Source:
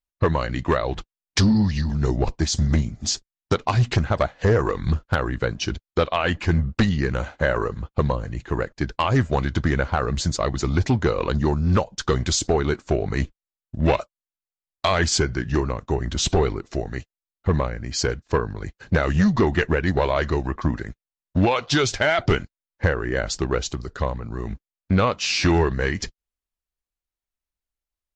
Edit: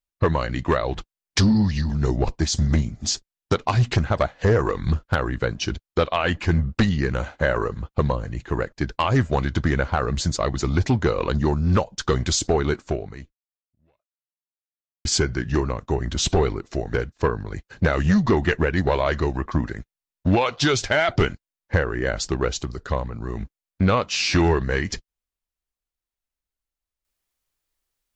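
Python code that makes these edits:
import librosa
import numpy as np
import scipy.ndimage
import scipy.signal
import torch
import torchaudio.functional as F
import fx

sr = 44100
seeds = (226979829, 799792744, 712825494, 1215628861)

y = fx.edit(x, sr, fx.fade_out_span(start_s=12.85, length_s=2.2, curve='exp'),
    fx.cut(start_s=16.94, length_s=1.1), tone=tone)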